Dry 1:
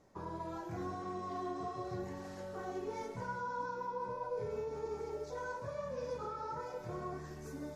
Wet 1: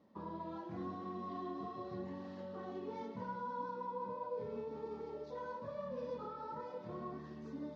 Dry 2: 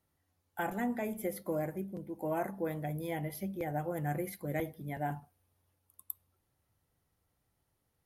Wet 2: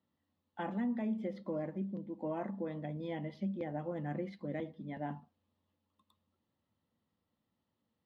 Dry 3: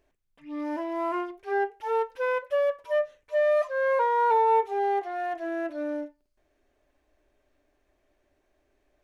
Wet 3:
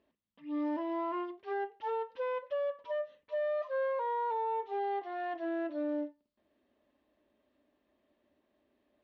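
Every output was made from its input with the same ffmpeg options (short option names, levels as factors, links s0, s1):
-af "highpass=130,equalizer=f=130:t=q:w=4:g=-8,equalizer=f=220:t=q:w=4:g=9,equalizer=f=400:t=q:w=4:g=-6,equalizer=f=740:t=q:w=4:g=-7,equalizer=f=1500:t=q:w=4:g=-9,equalizer=f=2300:t=q:w=4:g=-8,lowpass=f=3900:w=0.5412,lowpass=f=3900:w=1.3066,alimiter=level_in=1.58:limit=0.0631:level=0:latency=1:release=145,volume=0.631"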